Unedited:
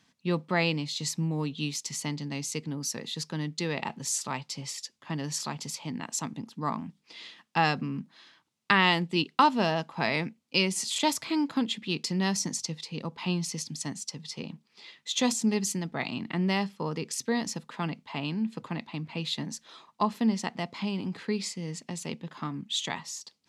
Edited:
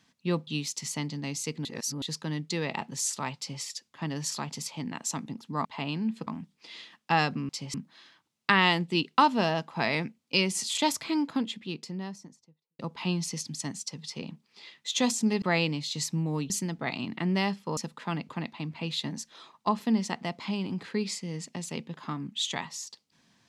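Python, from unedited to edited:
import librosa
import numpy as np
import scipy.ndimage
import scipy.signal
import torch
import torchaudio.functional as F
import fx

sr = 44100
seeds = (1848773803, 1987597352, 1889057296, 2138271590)

y = fx.studio_fade_out(x, sr, start_s=11.16, length_s=1.84)
y = fx.edit(y, sr, fx.move(start_s=0.47, length_s=1.08, to_s=15.63),
    fx.reverse_span(start_s=2.73, length_s=0.37),
    fx.duplicate(start_s=4.45, length_s=0.25, to_s=7.95),
    fx.cut(start_s=16.9, length_s=0.59),
    fx.move(start_s=18.01, length_s=0.62, to_s=6.73), tone=tone)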